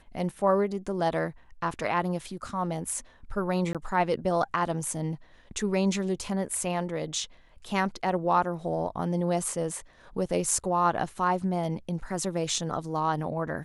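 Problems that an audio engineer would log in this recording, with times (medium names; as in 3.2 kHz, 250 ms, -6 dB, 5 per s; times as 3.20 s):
3.73–3.75 s: dropout 17 ms
10.51 s: dropout 3.3 ms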